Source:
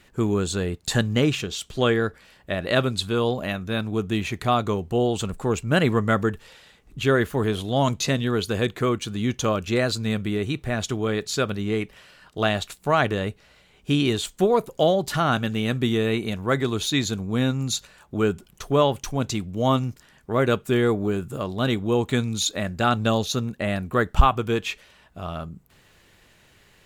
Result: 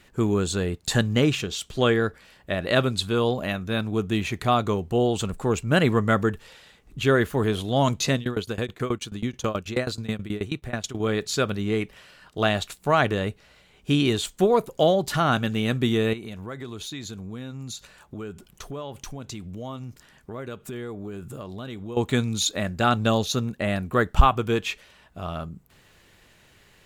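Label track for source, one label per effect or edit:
8.150000	11.000000	tremolo saw down 9.3 Hz, depth 95%
16.130000	21.970000	compression 4:1, threshold -34 dBFS

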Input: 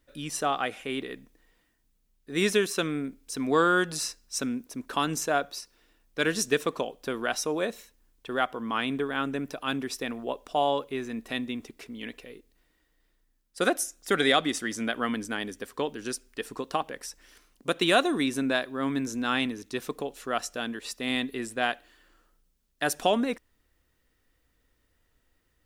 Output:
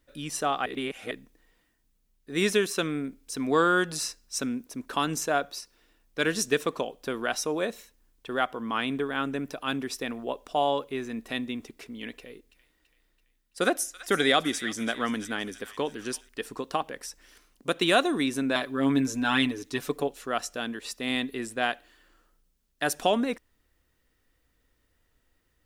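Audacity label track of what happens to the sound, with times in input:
0.660000	1.110000	reverse
12.160000	16.290000	feedback echo behind a high-pass 333 ms, feedback 53%, high-pass 1.5 kHz, level -14 dB
18.550000	20.080000	comb 7 ms, depth 94%

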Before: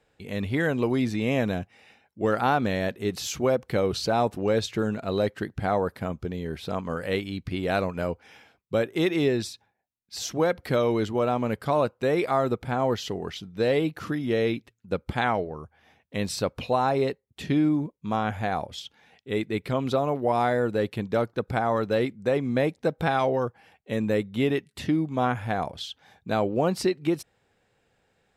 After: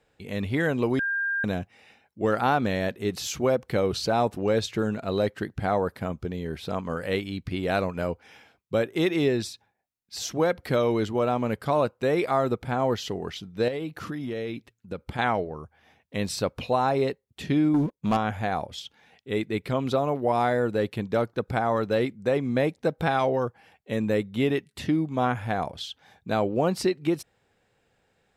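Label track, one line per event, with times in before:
0.990000	1.440000	bleep 1.6 kHz -24 dBFS
13.680000	15.190000	compression 4:1, threshold -29 dBFS
17.740000	18.170000	waveshaping leveller passes 2

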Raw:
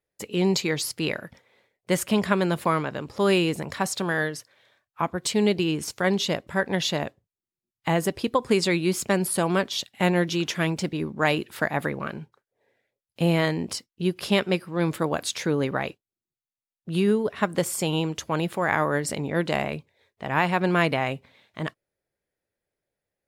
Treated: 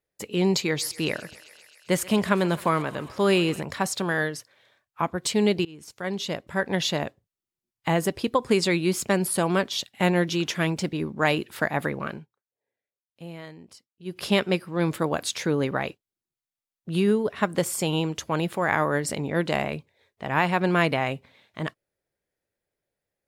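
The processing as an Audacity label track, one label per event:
0.620000	3.610000	thinning echo 132 ms, feedback 80%, high-pass 530 Hz, level -18.5 dB
5.650000	6.760000	fade in, from -23.5 dB
12.130000	14.190000	dip -18 dB, fades 0.14 s

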